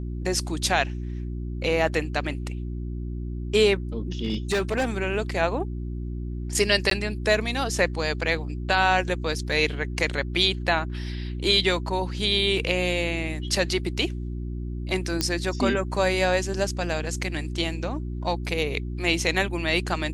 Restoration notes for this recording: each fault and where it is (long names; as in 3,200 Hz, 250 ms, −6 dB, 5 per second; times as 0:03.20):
mains hum 60 Hz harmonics 6 −31 dBFS
0:04.23–0:04.85: clipping −19.5 dBFS
0:06.90–0:06.91: drop-out 13 ms
0:15.21: click −8 dBFS